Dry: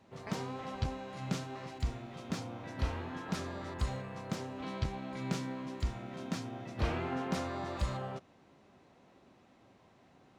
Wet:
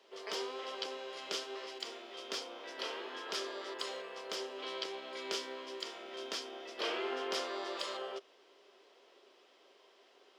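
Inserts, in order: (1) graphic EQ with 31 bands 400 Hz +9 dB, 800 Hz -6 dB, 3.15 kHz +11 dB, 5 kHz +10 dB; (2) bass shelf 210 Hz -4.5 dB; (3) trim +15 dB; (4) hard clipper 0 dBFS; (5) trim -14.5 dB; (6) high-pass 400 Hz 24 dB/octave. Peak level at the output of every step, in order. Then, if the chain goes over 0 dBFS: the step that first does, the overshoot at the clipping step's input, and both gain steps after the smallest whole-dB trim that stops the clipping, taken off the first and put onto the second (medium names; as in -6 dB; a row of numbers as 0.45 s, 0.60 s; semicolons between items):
-17.0 dBFS, -18.0 dBFS, -3.0 dBFS, -3.0 dBFS, -17.5 dBFS, -18.5 dBFS; nothing clips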